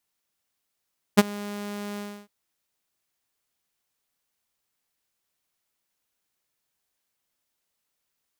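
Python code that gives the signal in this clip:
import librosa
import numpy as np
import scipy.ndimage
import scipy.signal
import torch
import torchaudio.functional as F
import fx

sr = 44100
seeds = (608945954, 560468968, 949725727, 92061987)

y = fx.adsr_tone(sr, wave='saw', hz=205.0, attack_ms=19.0, decay_ms=30.0, sustain_db=-23.0, held_s=0.81, release_ms=296.0, level_db=-6.5)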